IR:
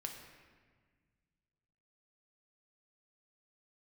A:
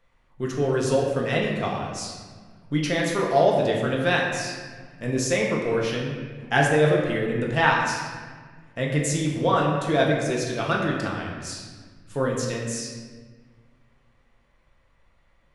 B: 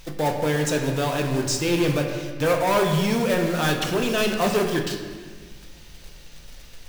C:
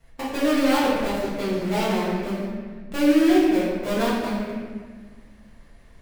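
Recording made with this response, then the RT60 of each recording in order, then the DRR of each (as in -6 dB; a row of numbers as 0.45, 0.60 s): B; 1.5, 1.6, 1.5 s; -2.5, 2.0, -10.5 dB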